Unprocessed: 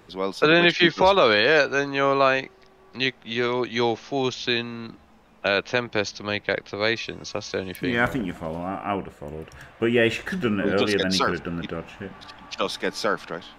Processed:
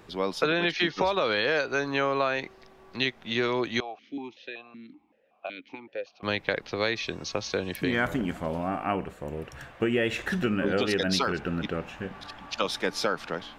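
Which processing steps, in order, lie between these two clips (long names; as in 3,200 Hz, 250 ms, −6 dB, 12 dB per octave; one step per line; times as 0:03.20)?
downward compressor 6 to 1, threshold −22 dBFS, peak gain reduction 10 dB
0:03.80–0:06.23: formant filter that steps through the vowels 5.3 Hz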